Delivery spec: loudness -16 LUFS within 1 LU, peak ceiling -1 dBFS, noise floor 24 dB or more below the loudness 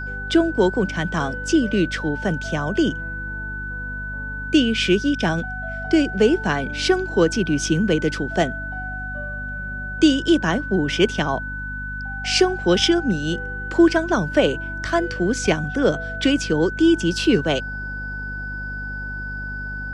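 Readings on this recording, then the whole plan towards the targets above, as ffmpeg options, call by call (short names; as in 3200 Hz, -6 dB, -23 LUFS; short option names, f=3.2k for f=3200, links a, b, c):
hum 50 Hz; harmonics up to 250 Hz; hum level -30 dBFS; steady tone 1500 Hz; tone level -29 dBFS; loudness -21.5 LUFS; peak -4.5 dBFS; loudness target -16.0 LUFS
-> -af "bandreject=f=50:t=h:w=4,bandreject=f=100:t=h:w=4,bandreject=f=150:t=h:w=4,bandreject=f=200:t=h:w=4,bandreject=f=250:t=h:w=4"
-af "bandreject=f=1.5k:w=30"
-af "volume=5.5dB,alimiter=limit=-1dB:level=0:latency=1"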